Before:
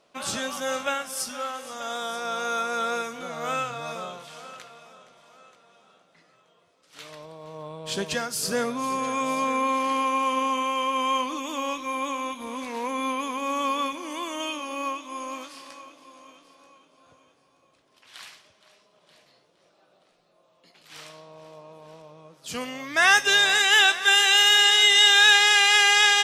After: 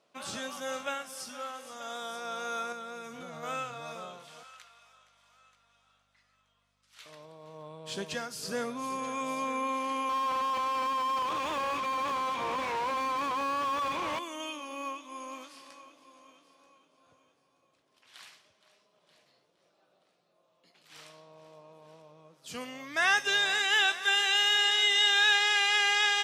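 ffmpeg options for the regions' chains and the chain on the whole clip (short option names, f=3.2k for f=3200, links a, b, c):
-filter_complex "[0:a]asettb=1/sr,asplit=3[a][b][c];[a]atrim=end=2.724[d];[b]atrim=start=2.72:end=3.43,asetpts=PTS-STARTPTS,afade=t=in:d=0.004:c=qsin,afade=t=out:st=0.706:d=0.004:c=qsin,equalizer=f=86:w=0.73:g=13,acompressor=threshold=-31dB:ratio=6:attack=3.2:release=140:knee=1:detection=peak[e];[c]atrim=start=3.426[f];[d][e]acrossfade=d=0.004:c1=hsin:c2=qsin[g];[g][f]acrossfade=d=0.004:c1=qsin:c2=hsin,asettb=1/sr,asplit=3[h][i][j];[h]atrim=end=4.434[k];[i]atrim=start=4.43:end=7.06,asetpts=PTS-STARTPTS,afade=t=in:d=0.004:c=qsin,afade=t=out:st=2.626:d=0.004:c=qsin,highpass=1.1k,aeval=exprs='val(0)+0.000398*(sin(2*PI*50*n/s)+sin(2*PI*2*50*n/s)/2+sin(2*PI*3*50*n/s)/3+sin(2*PI*4*50*n/s)/4+sin(2*PI*5*50*n/s)/5)':c=same[l];[j]atrim=start=7.056[m];[k][l]acrossfade=d=0.004:c1=hsin:c2=qsin[n];[n][m]acrossfade=d=0.004:c1=qsin:c2=hsin,asettb=1/sr,asplit=3[o][p][q];[o]atrim=end=10.094[r];[p]atrim=start=10.09:end=14.19,asetpts=PTS-STARTPTS,afade=t=in:d=0.004:c=qsin,afade=t=out:st=4.096:d=0.004:c=qsin,highpass=430,lowpass=6.1k,equalizer=f=4.8k:t=o:w=0.63:g=-6.5,asplit=2[s][t];[t]highpass=f=720:p=1,volume=36dB,asoftclip=type=tanh:threshold=-16.5dB[u];[s][u]amix=inputs=2:normalize=0,lowpass=f=1.6k:p=1,volume=-6dB[v];[q]atrim=start=14.186[w];[r][v]acrossfade=d=0.004:c1=hsin:c2=qsin[x];[x][w]acrossfade=d=0.004:c1=qsin:c2=hsin,highpass=67,acrossover=split=5700[y][z];[z]acompressor=threshold=-35dB:ratio=4:attack=1:release=60[aa];[y][aa]amix=inputs=2:normalize=0,volume=-7.5dB"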